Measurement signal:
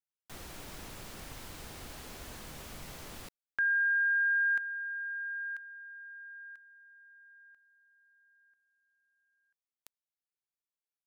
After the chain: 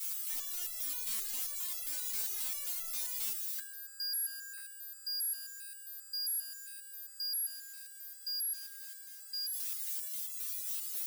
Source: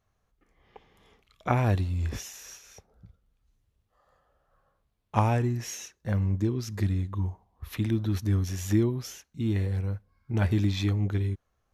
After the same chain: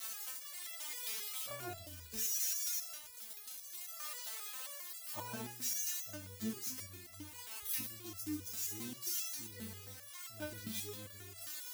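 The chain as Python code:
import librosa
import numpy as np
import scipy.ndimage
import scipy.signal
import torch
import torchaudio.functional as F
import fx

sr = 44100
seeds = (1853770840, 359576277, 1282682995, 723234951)

y = x + 0.5 * 10.0 ** (-15.0 / 20.0) * np.diff(np.sign(x), prepend=np.sign(x[:1]))
y = y + 10.0 ** (-10.0 / 20.0) * np.pad(y, (int(134 * sr / 1000.0), 0))[:len(y)]
y = fx.resonator_held(y, sr, hz=7.5, low_hz=220.0, high_hz=670.0)
y = y * 10.0 ** (-1.5 / 20.0)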